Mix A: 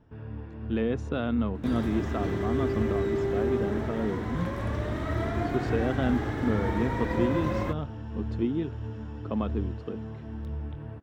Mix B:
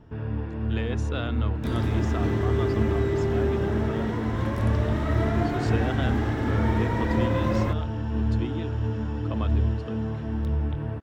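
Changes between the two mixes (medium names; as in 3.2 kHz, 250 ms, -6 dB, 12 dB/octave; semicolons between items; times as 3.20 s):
speech: add tilt EQ +3.5 dB/octave; first sound +9.0 dB; second sound: send +6.0 dB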